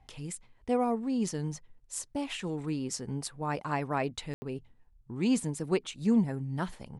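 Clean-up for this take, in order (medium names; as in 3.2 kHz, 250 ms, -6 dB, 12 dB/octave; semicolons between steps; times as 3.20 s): room tone fill 4.34–4.42 s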